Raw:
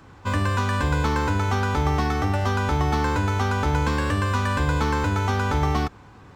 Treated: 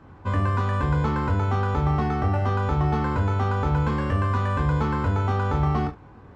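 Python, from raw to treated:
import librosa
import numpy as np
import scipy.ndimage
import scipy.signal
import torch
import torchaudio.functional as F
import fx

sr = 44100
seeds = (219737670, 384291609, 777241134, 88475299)

p1 = fx.lowpass(x, sr, hz=1000.0, slope=6)
y = p1 + fx.room_early_taps(p1, sr, ms=(22, 35, 69), db=(-5.5, -9.5, -15.5), dry=0)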